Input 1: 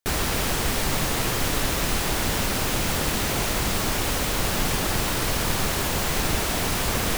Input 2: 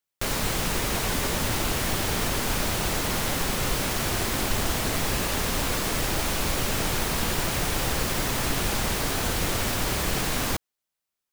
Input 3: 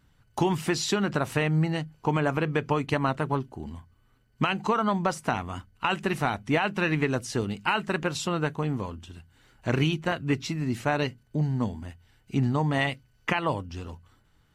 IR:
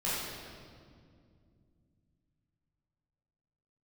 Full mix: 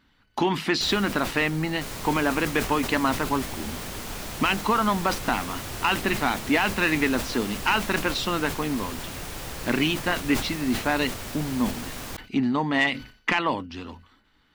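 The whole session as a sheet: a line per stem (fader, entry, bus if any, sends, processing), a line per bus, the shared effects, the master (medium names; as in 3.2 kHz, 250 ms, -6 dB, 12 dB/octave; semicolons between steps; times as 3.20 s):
-7.5 dB, 0.75 s, no send, auto duck -10 dB, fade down 1.70 s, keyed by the third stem
-9.5 dB, 1.60 s, no send, none
-2.5 dB, 0.00 s, no send, graphic EQ 125/250/1000/2000/4000/8000 Hz -10/+10/+5/+7/+10/-6 dB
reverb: none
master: saturation -11 dBFS, distortion -20 dB; decay stretcher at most 120 dB/s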